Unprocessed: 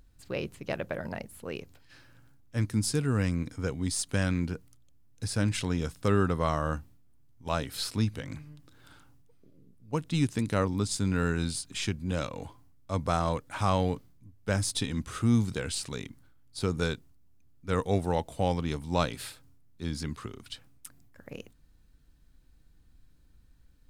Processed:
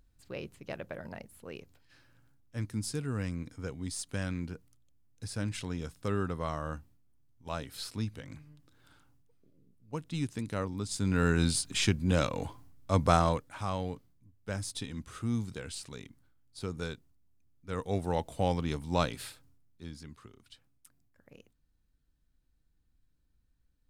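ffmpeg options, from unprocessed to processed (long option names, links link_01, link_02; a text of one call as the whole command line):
ffmpeg -i in.wav -af "volume=10.5dB,afade=type=in:start_time=10.84:duration=0.66:silence=0.281838,afade=type=out:start_time=13.13:duration=0.41:silence=0.251189,afade=type=in:start_time=17.74:duration=0.53:silence=0.473151,afade=type=out:start_time=19.07:duration=0.93:silence=0.266073" out.wav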